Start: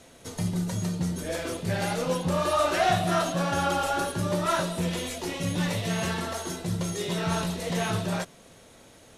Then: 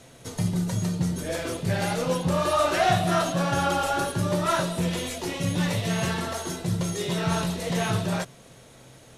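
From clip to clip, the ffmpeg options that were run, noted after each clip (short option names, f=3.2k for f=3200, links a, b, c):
-af "equalizer=f=130:w=7.4:g=13,volume=1.5dB"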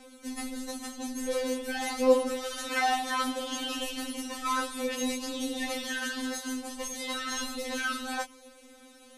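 -af "afftfilt=real='re*3.46*eq(mod(b,12),0)':imag='im*3.46*eq(mod(b,12),0)':win_size=2048:overlap=0.75"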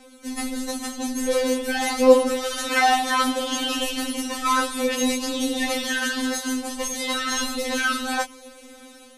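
-af "dynaudnorm=f=200:g=3:m=6dB,volume=2.5dB"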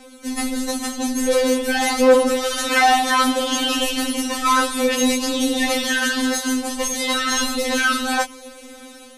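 -af "asoftclip=type=tanh:threshold=-11.5dB,volume=5dB"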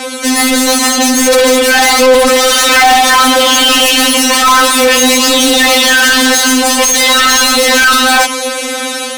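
-filter_complex "[0:a]asplit=2[a][b];[b]highpass=f=720:p=1,volume=29dB,asoftclip=type=tanh:threshold=-6.5dB[c];[a][c]amix=inputs=2:normalize=0,lowpass=f=8k:p=1,volume=-6dB,volume=5dB"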